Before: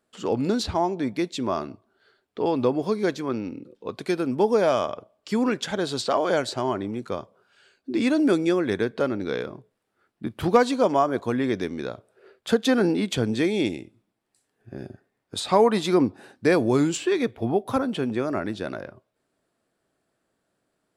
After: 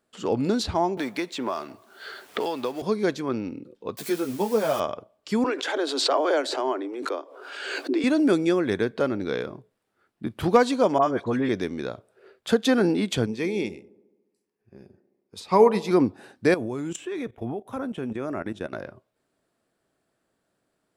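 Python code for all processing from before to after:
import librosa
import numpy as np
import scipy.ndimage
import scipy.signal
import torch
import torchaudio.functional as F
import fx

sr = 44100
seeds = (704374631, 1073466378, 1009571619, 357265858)

y = fx.chain(x, sr, fx.law_mismatch(coded='mu'),
    fx.highpass(hz=780.0, slope=6),
    fx.band_squash(depth_pct=100), at=(0.97, 2.82))
y = fx.chain(y, sr, fx.crossing_spikes(level_db=-23.5),
    fx.ensemble(), at=(3.97, 4.8))
y = fx.chain(y, sr, fx.steep_highpass(hz=270.0, slope=96),
    fx.high_shelf(hz=4400.0, db=-7.5),
    fx.pre_swell(db_per_s=40.0), at=(5.44, 8.04))
y = fx.chain(y, sr, fx.air_absorb(metres=50.0),
    fx.dispersion(late='highs', ms=49.0, hz=1400.0), at=(10.98, 11.49))
y = fx.chain(y, sr, fx.ripple_eq(per_octave=0.83, db=7),
    fx.echo_wet_bandpass(ms=71, feedback_pct=67, hz=430.0, wet_db=-12),
    fx.upward_expand(threshold_db=-37.0, expansion=1.5), at=(13.26, 15.91))
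y = fx.chain(y, sr, fx.peak_eq(hz=4500.0, db=-13.5, octaves=0.32),
    fx.level_steps(step_db=15), at=(16.54, 18.73))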